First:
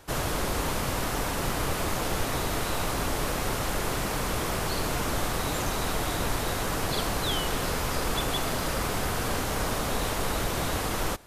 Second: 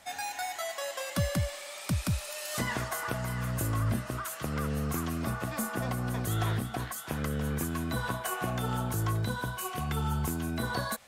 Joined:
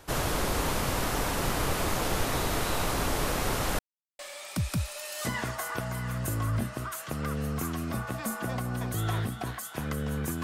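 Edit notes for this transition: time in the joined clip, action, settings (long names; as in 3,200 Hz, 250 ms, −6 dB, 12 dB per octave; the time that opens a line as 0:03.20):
first
0:03.79–0:04.19: silence
0:04.19: continue with second from 0:01.52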